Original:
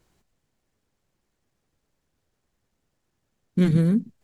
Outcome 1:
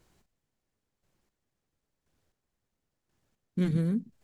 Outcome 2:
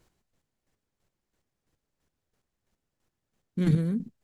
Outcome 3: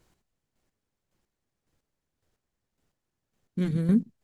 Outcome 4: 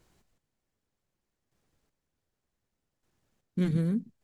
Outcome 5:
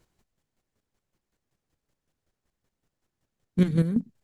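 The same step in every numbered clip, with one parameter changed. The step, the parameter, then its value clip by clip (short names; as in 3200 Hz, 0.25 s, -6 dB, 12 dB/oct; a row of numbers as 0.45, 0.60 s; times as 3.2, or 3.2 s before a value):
chopper, rate: 0.97, 3, 1.8, 0.66, 5.3 Hz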